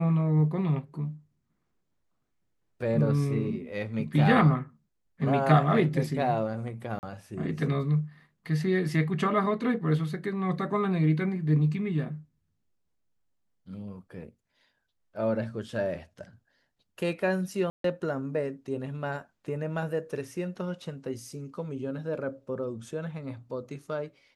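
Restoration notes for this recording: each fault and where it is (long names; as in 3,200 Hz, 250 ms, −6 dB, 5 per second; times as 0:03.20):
0:06.99–0:07.03: drop-out 39 ms
0:17.70–0:17.84: drop-out 143 ms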